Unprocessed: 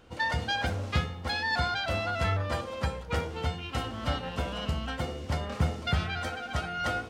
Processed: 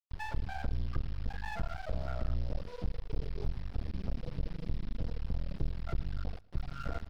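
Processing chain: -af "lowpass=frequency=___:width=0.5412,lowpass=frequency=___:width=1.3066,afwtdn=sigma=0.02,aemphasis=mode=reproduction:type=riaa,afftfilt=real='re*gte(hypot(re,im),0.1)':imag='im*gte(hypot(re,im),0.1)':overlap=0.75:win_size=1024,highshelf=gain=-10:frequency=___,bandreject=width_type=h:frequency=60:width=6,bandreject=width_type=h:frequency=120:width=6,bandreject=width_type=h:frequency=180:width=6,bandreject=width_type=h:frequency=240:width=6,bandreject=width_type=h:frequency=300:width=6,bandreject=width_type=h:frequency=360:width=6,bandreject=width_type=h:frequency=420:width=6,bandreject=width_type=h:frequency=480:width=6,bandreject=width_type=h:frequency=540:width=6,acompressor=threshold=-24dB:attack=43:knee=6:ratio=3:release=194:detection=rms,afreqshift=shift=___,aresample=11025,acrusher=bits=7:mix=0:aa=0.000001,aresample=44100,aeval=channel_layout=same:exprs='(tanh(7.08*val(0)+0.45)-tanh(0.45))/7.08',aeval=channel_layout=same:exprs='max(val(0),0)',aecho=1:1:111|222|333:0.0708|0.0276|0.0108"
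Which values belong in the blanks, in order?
4000, 4000, 2300, -37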